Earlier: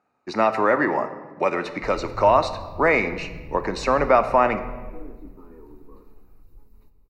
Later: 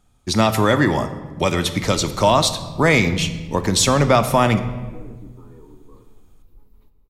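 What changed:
speech: remove band-pass 390–2100 Hz; master: remove Butterworth band-stop 3.3 kHz, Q 3.8

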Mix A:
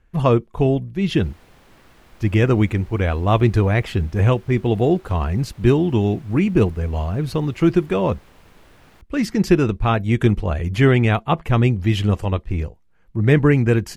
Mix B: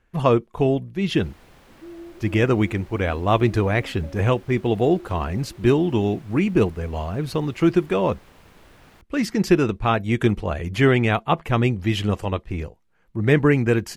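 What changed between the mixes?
speech: add bass shelf 140 Hz -9 dB; second sound: unmuted

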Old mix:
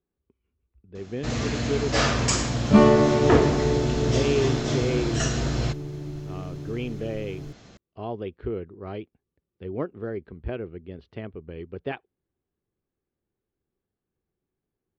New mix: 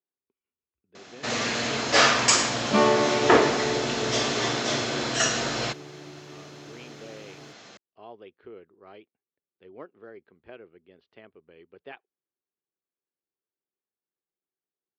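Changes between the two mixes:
speech -9.0 dB; first sound +5.5 dB; master: add frequency weighting A

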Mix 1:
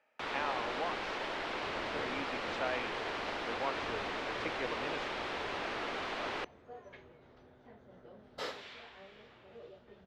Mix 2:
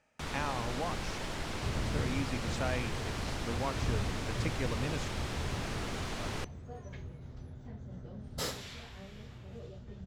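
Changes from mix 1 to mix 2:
first sound -4.0 dB; master: remove three-band isolator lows -22 dB, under 310 Hz, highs -23 dB, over 4.1 kHz

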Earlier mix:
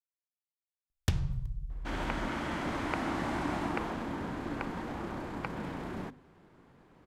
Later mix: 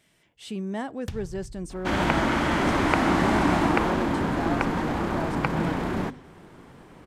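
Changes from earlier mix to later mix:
speech: unmuted; first sound -6.0 dB; second sound +11.5 dB

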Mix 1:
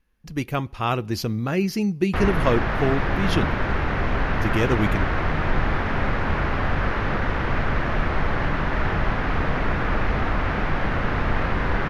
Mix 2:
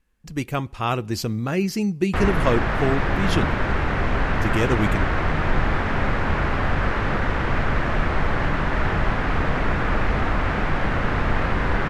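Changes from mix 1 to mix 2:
background: send +8.0 dB; master: add peaking EQ 7.8 kHz +13 dB 0.26 oct

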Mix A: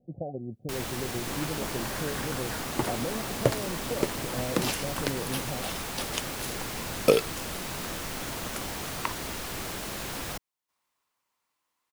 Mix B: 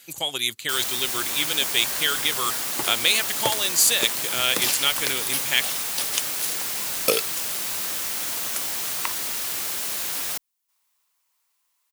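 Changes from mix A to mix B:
speech: remove rippled Chebyshev low-pass 760 Hz, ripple 6 dB; master: add tilt EQ +3.5 dB/octave

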